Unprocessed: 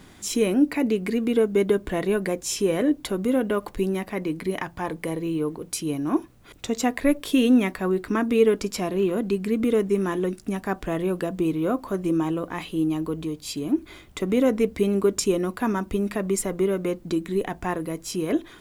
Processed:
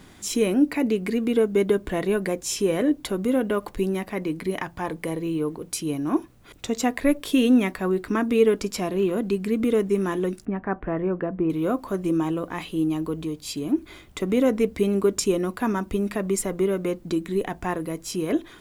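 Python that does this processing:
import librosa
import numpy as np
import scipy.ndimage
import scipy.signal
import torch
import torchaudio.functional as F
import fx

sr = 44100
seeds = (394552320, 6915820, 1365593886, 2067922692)

y = fx.lowpass(x, sr, hz=2000.0, slope=24, at=(10.45, 11.5))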